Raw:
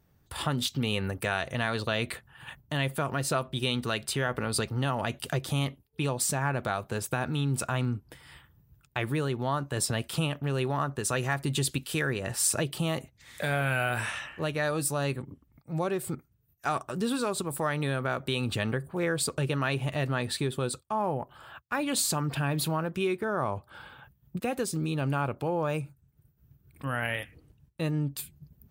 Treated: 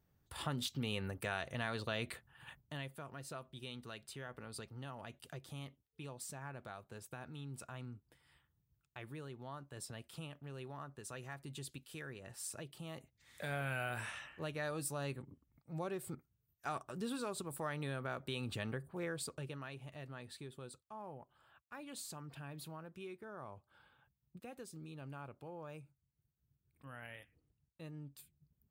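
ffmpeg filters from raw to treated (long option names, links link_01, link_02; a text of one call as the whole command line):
ffmpeg -i in.wav -af "volume=-2.5dB,afade=type=out:start_time=2.48:duration=0.43:silence=0.354813,afade=type=in:start_time=12.84:duration=0.7:silence=0.421697,afade=type=out:start_time=18.92:duration=0.79:silence=0.375837" out.wav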